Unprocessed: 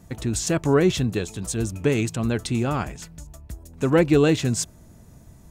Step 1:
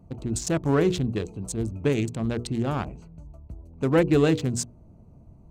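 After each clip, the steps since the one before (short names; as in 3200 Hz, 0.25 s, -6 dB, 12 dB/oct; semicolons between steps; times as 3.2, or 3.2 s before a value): Wiener smoothing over 25 samples; notches 60/120/180/240/300/360/420/480 Hz; gain -1.5 dB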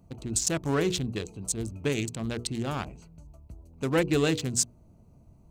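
high shelf 2100 Hz +11.5 dB; gain -5.5 dB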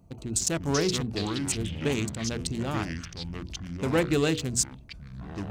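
echoes that change speed 0.262 s, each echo -5 st, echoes 3, each echo -6 dB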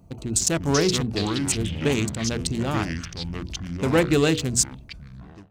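ending faded out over 0.67 s; gain +5 dB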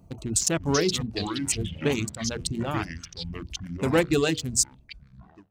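reverb removal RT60 1.9 s; gain -1.5 dB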